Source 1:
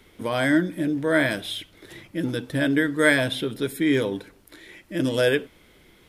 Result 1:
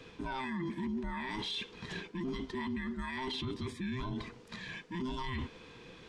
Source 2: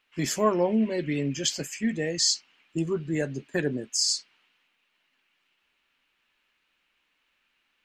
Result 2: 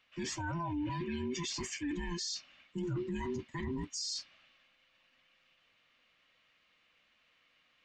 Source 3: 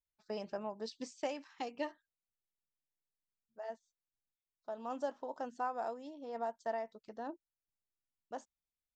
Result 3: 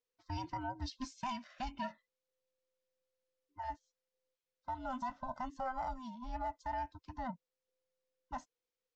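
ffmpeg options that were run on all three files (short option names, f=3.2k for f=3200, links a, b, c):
-af "afftfilt=real='real(if(between(b,1,1008),(2*floor((b-1)/24)+1)*24-b,b),0)':imag='imag(if(between(b,1,1008),(2*floor((b-1)/24)+1)*24-b,b),0)*if(between(b,1,1008),-1,1)':win_size=2048:overlap=0.75,lowpass=f=6.7k:w=0.5412,lowpass=f=6.7k:w=1.3066,areverse,acompressor=threshold=-30dB:ratio=8,areverse,alimiter=level_in=8dB:limit=-24dB:level=0:latency=1:release=16,volume=-8dB,volume=2dB"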